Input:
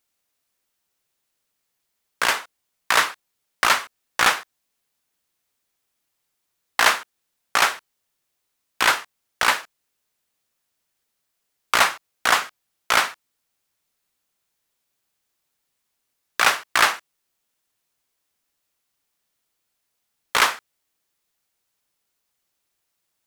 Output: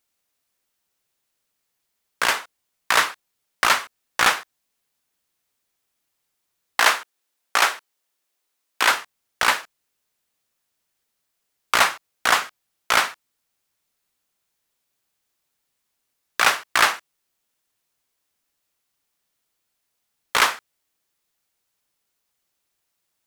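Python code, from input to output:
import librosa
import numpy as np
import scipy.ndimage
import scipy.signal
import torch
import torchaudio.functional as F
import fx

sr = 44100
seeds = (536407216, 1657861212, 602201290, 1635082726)

y = fx.highpass(x, sr, hz=270.0, slope=12, at=(6.8, 8.91))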